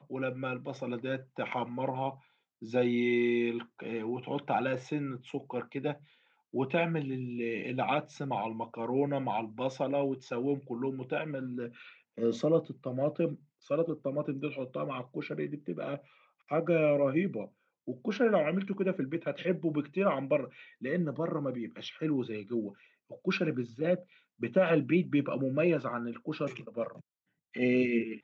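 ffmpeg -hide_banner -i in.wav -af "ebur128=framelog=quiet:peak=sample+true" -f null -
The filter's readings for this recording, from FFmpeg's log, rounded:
Integrated loudness:
  I:         -32.6 LUFS
  Threshold: -43.0 LUFS
Loudness range:
  LRA:         4.1 LU
  Threshold: -53.0 LUFS
  LRA low:   -35.0 LUFS
  LRA high:  -30.9 LUFS
Sample peak:
  Peak:      -14.0 dBFS
True peak:
  Peak:      -14.0 dBFS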